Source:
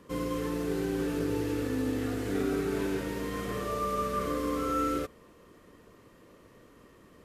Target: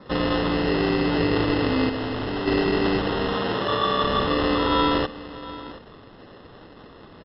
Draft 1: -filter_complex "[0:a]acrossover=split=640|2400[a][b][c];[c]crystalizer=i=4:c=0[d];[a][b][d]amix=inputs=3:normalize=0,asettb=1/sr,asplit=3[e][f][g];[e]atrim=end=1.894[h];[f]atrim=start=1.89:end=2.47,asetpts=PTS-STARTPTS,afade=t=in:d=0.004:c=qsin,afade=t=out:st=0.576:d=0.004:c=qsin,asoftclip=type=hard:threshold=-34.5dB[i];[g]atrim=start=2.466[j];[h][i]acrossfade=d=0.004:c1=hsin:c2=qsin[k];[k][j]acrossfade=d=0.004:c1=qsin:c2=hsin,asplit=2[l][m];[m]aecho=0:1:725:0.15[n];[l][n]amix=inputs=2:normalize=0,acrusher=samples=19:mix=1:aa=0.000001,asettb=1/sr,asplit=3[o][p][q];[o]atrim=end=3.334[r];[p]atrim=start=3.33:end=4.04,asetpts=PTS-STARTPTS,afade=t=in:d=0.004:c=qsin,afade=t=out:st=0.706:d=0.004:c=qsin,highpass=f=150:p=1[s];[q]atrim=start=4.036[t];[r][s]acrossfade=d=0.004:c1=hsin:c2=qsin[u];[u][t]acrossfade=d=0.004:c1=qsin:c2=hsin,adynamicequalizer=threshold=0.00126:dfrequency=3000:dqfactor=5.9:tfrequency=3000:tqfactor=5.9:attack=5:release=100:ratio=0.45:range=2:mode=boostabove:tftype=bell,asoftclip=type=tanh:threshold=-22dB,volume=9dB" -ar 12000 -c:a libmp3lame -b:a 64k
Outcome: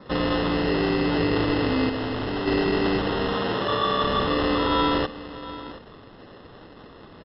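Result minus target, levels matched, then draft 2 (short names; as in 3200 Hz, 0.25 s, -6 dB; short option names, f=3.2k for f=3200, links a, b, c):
soft clip: distortion +11 dB
-filter_complex "[0:a]acrossover=split=640|2400[a][b][c];[c]crystalizer=i=4:c=0[d];[a][b][d]amix=inputs=3:normalize=0,asettb=1/sr,asplit=3[e][f][g];[e]atrim=end=1.894[h];[f]atrim=start=1.89:end=2.47,asetpts=PTS-STARTPTS,afade=t=in:d=0.004:c=qsin,afade=t=out:st=0.576:d=0.004:c=qsin,asoftclip=type=hard:threshold=-34.5dB[i];[g]atrim=start=2.466[j];[h][i]acrossfade=d=0.004:c1=hsin:c2=qsin[k];[k][j]acrossfade=d=0.004:c1=qsin:c2=hsin,asplit=2[l][m];[m]aecho=0:1:725:0.15[n];[l][n]amix=inputs=2:normalize=0,acrusher=samples=19:mix=1:aa=0.000001,asettb=1/sr,asplit=3[o][p][q];[o]atrim=end=3.334[r];[p]atrim=start=3.33:end=4.04,asetpts=PTS-STARTPTS,afade=t=in:d=0.004:c=qsin,afade=t=out:st=0.706:d=0.004:c=qsin,highpass=f=150:p=1[s];[q]atrim=start=4.036[t];[r][s]acrossfade=d=0.004:c1=hsin:c2=qsin[u];[u][t]acrossfade=d=0.004:c1=qsin:c2=hsin,adynamicequalizer=threshold=0.00126:dfrequency=3000:dqfactor=5.9:tfrequency=3000:tqfactor=5.9:attack=5:release=100:ratio=0.45:range=2:mode=boostabove:tftype=bell,asoftclip=type=tanh:threshold=-15.5dB,volume=9dB" -ar 12000 -c:a libmp3lame -b:a 64k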